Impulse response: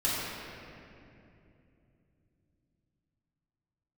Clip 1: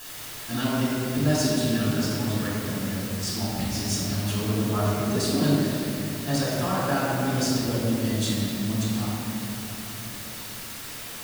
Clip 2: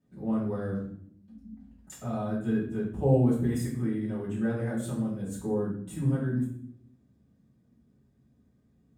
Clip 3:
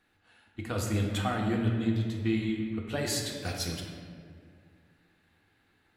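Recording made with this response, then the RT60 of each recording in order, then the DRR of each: 1; 2.8, 0.65, 2.1 s; -10.0, -10.5, -1.0 dB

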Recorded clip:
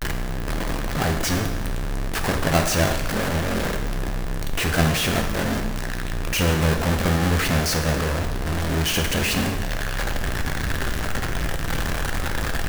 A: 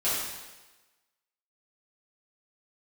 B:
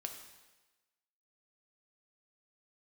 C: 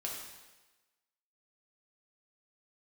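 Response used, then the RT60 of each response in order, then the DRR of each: B; 1.2, 1.2, 1.2 s; -12.5, 4.0, -3.0 dB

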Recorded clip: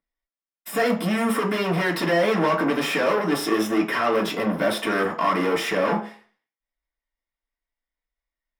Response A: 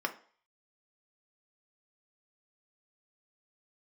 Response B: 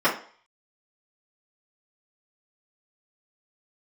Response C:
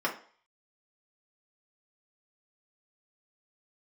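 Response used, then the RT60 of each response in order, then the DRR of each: C; 0.45, 0.45, 0.45 s; 4.0, -11.5, -3.0 dB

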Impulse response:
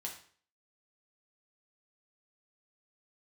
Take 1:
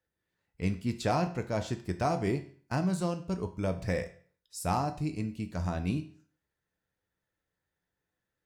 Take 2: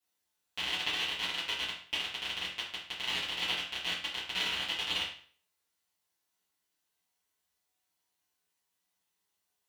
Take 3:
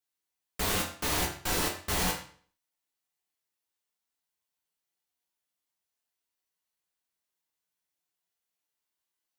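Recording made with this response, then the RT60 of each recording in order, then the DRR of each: 3; 0.50, 0.50, 0.50 s; 7.0, -11.0, -1.0 dB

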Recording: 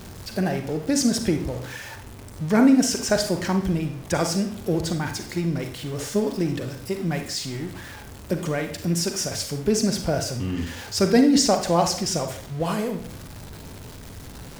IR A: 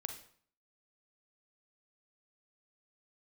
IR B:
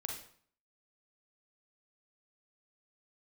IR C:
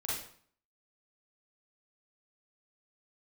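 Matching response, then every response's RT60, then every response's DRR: A; 0.55, 0.55, 0.55 s; 5.5, 1.0, -7.0 dB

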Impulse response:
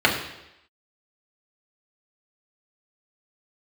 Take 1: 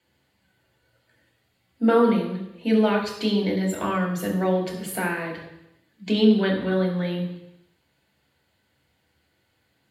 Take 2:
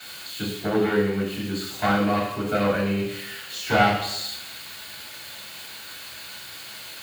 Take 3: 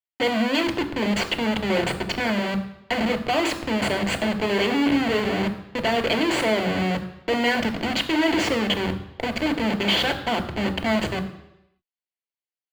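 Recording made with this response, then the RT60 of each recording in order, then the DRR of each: 1; 0.85, 0.85, 0.85 s; -2.5, -12.0, 5.5 dB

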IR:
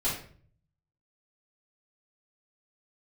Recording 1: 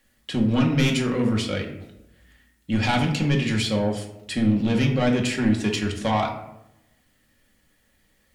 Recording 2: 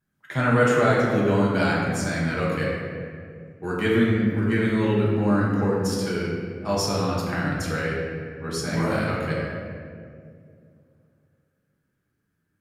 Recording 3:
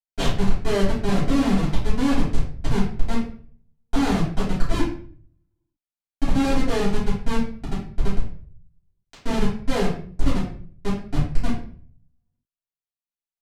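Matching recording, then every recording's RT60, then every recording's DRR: 3; 0.90, 2.3, 0.50 s; 0.5, -6.0, -10.5 dB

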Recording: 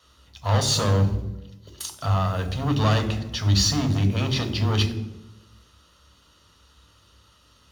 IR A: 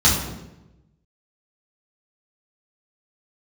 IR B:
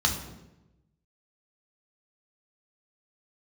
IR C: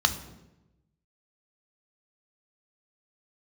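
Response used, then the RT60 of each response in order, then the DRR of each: C; 0.95, 0.95, 0.95 s; -7.0, 1.0, 7.5 dB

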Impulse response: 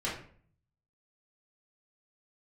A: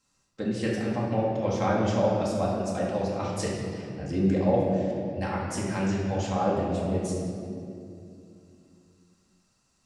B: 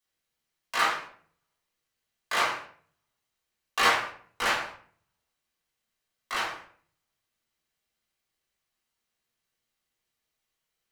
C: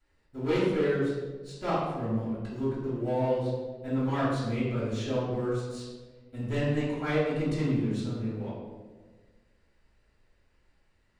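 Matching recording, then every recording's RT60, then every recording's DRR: B; 2.6, 0.50, 1.5 s; -5.5, -8.5, -10.5 dB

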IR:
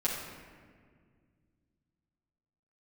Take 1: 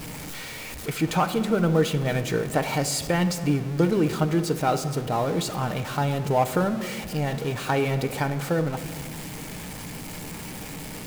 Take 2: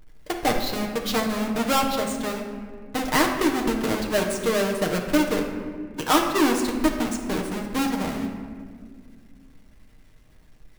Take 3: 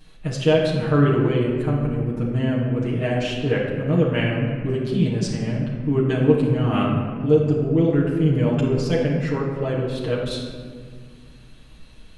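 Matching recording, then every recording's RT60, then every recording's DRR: 3; 2.0, 1.9, 1.9 s; 7.5, 0.0, -7.5 dB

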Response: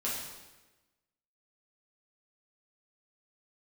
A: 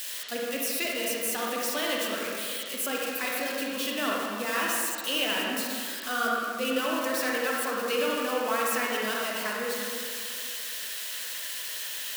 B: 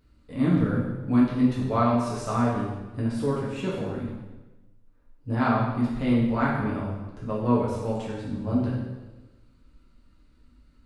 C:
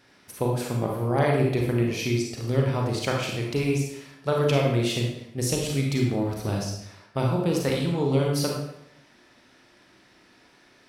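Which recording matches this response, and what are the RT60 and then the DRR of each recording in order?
B; 2.2, 1.1, 0.80 s; -3.5, -7.0, -0.5 dB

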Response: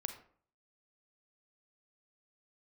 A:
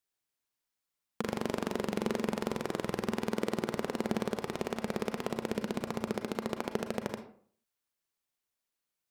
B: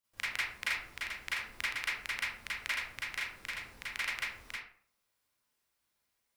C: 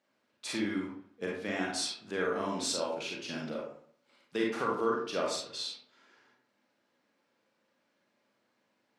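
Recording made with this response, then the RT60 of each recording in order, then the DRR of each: A; 0.50, 0.50, 0.50 s; 6.5, -11.0, -3.0 dB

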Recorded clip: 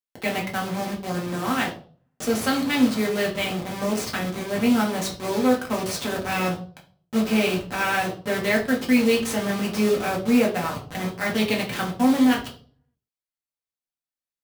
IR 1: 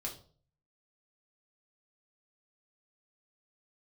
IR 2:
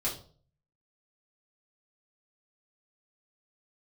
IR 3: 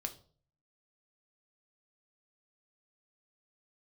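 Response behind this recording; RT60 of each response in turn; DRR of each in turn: 1; 0.45, 0.45, 0.45 s; -2.0, -7.0, 5.0 dB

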